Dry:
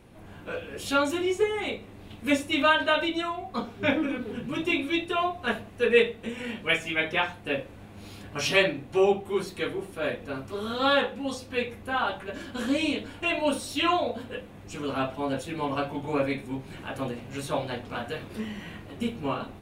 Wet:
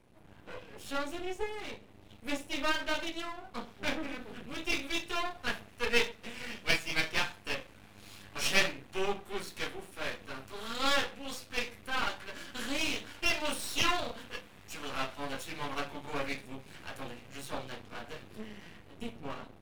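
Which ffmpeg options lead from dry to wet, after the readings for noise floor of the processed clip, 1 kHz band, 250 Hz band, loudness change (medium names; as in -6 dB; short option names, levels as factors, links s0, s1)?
-56 dBFS, -8.0 dB, -11.5 dB, -7.0 dB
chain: -filter_complex "[0:a]acrossover=split=130|1100[s0][s1][s2];[s2]dynaudnorm=f=860:g=9:m=3.76[s3];[s0][s1][s3]amix=inputs=3:normalize=0,aeval=exprs='max(val(0),0)':c=same,volume=0.447"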